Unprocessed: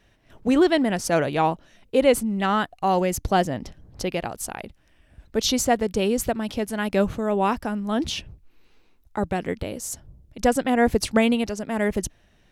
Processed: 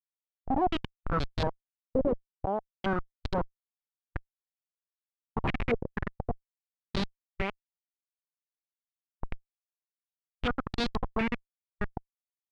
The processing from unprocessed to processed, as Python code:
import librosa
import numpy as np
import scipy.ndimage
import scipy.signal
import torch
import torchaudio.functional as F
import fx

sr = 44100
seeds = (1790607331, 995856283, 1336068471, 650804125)

y = fx.schmitt(x, sr, flips_db=-16.5)
y = fx.formant_shift(y, sr, semitones=-5)
y = fx.filter_held_lowpass(y, sr, hz=4.2, low_hz=550.0, high_hz=4100.0)
y = y * librosa.db_to_amplitude(-4.0)